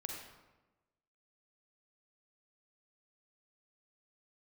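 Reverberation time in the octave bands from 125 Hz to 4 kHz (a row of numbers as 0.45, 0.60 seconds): 1.2, 1.3, 1.2, 1.1, 0.90, 0.70 seconds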